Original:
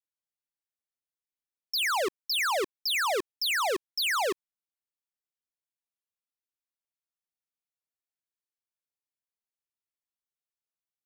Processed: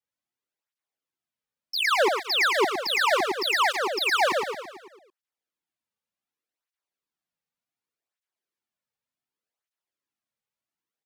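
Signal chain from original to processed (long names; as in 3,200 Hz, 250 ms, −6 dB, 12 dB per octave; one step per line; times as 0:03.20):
high-shelf EQ 5,300 Hz −11 dB
repeating echo 111 ms, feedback 53%, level −4 dB
through-zero flanger with one copy inverted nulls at 0.67 Hz, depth 3.1 ms
level +8 dB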